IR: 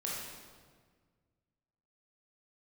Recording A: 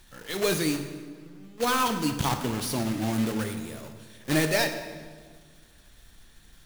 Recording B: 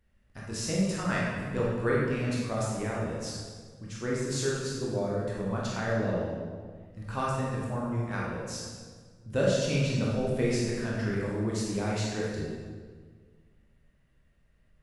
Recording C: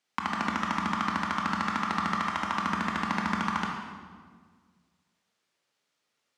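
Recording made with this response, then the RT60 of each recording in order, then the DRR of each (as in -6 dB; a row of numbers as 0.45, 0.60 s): B; 1.7, 1.6, 1.6 s; 6.5, -5.5, -0.5 dB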